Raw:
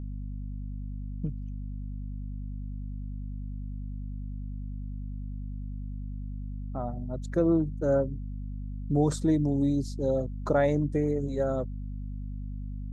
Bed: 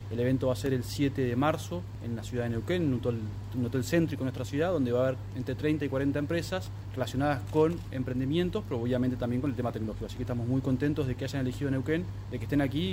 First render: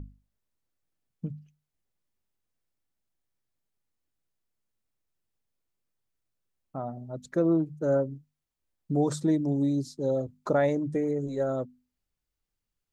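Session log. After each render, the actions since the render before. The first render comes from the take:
mains-hum notches 50/100/150/200/250 Hz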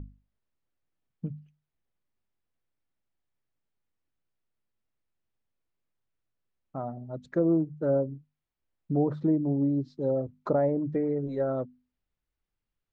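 treble cut that deepens with the level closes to 820 Hz, closed at −21 dBFS
low-pass filter 3,200 Hz 12 dB per octave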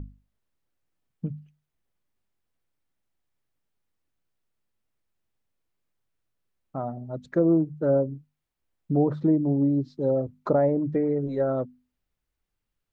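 level +3.5 dB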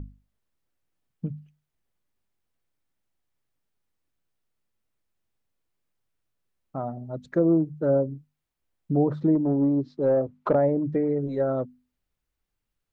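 0:09.35–0:10.55: mid-hump overdrive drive 14 dB, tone 1,200 Hz, clips at −10.5 dBFS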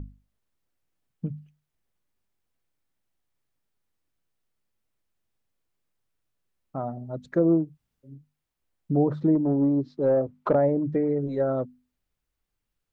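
0:07.66–0:08.15: fill with room tone, crossfade 0.24 s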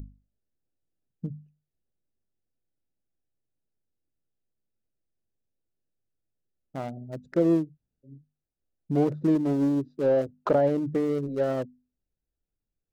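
adaptive Wiener filter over 41 samples
bass and treble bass −3 dB, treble +14 dB

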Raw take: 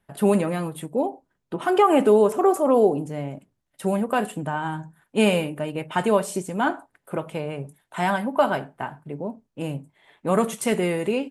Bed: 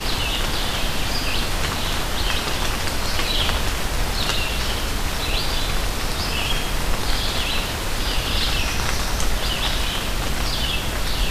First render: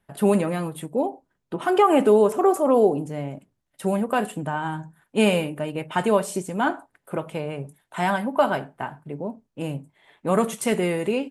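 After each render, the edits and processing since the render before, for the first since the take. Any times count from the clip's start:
no processing that can be heard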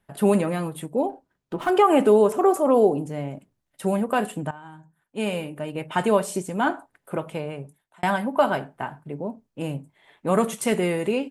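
0:01.09–0:01.70: windowed peak hold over 3 samples
0:04.51–0:05.89: fade in quadratic, from −15.5 dB
0:07.14–0:08.03: fade out equal-power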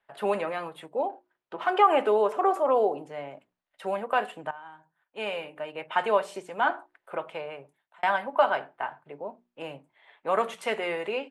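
three-way crossover with the lows and the highs turned down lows −20 dB, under 480 Hz, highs −19 dB, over 4,100 Hz
mains-hum notches 60/120/180/240/300/360 Hz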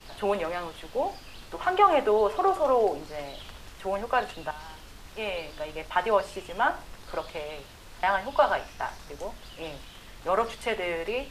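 mix in bed −23.5 dB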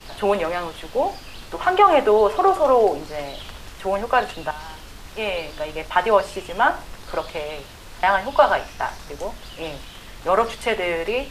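level +7 dB
brickwall limiter −3 dBFS, peak gain reduction 2 dB

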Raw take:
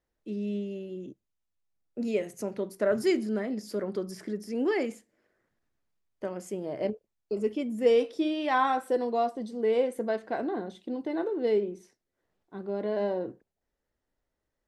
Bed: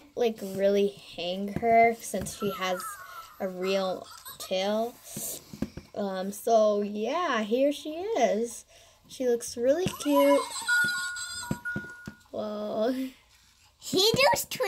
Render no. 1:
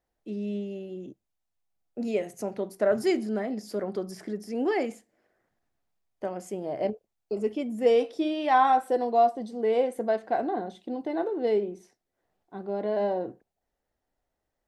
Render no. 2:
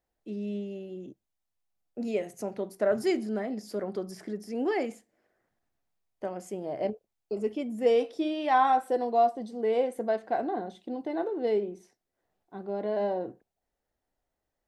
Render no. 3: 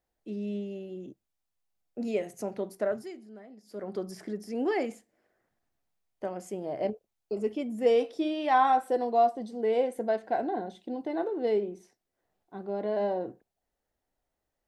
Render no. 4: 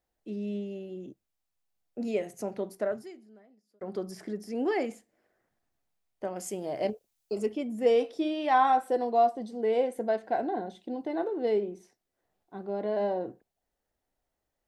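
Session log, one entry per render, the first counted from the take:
parametric band 740 Hz +8.5 dB 0.41 octaves
level −2 dB
0:02.73–0:04.00: duck −16.5 dB, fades 0.36 s; 0:09.56–0:10.97: Butterworth band-reject 1,200 Hz, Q 6.7
0:02.74–0:03.81: fade out; 0:06.36–0:07.46: high-shelf EQ 2,800 Hz +11.5 dB

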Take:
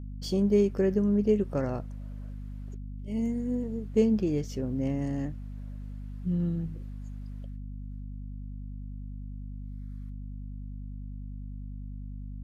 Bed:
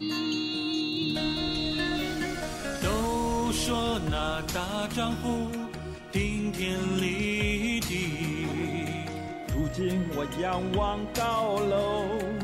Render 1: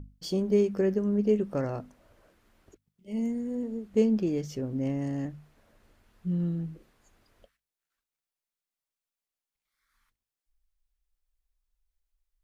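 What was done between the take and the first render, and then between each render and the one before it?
mains-hum notches 50/100/150/200/250 Hz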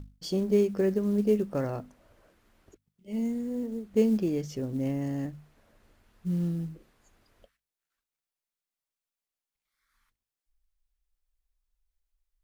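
floating-point word with a short mantissa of 4 bits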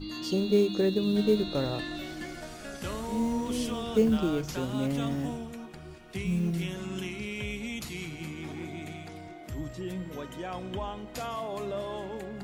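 mix in bed −8 dB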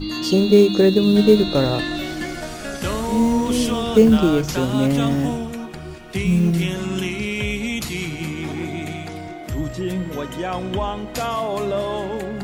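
level +11.5 dB
brickwall limiter −2 dBFS, peak gain reduction 1 dB

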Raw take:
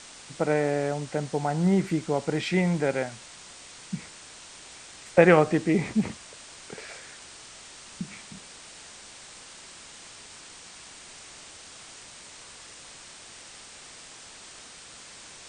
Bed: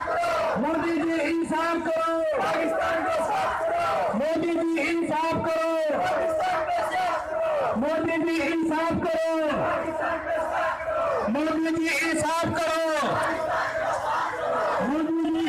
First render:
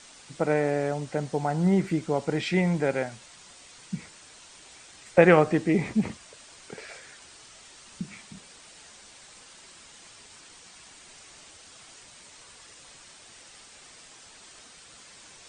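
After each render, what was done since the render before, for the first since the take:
broadband denoise 6 dB, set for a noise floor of −47 dBFS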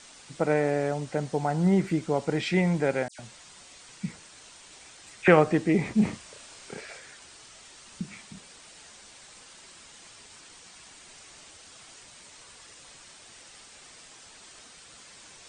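0:03.08–0:05.28: all-pass dispersion lows, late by 109 ms, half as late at 2,600 Hz
0:05.94–0:06.81: double-tracking delay 33 ms −2.5 dB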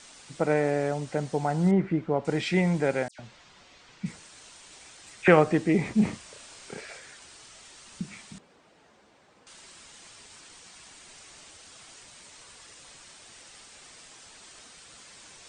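0:01.71–0:02.25: low-pass filter 2,000 Hz
0:03.11–0:04.06: high-frequency loss of the air 140 metres
0:08.38–0:09.47: resonant band-pass 340 Hz, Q 0.5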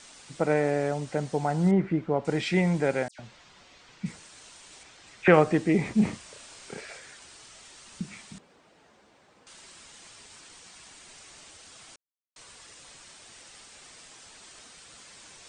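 0:04.83–0:05.34: high-frequency loss of the air 71 metres
0:11.96–0:12.36: silence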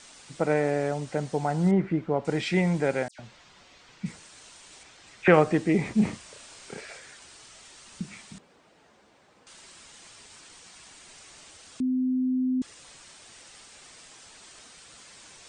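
0:11.80–0:12.62: beep over 256 Hz −22.5 dBFS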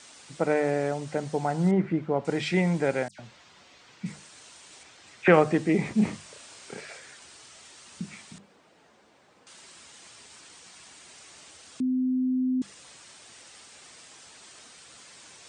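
high-pass filter 71 Hz
mains-hum notches 50/100/150/200 Hz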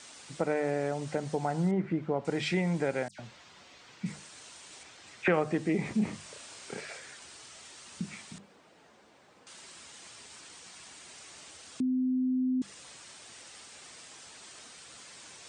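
downward compressor 2 to 1, threshold −29 dBFS, peak gain reduction 9.5 dB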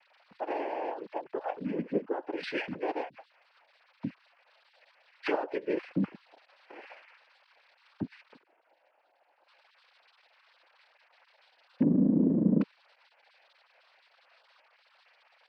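three sine waves on the formant tracks
cochlear-implant simulation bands 8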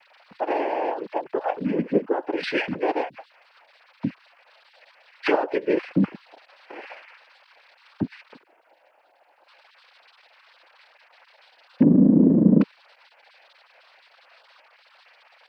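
level +9 dB

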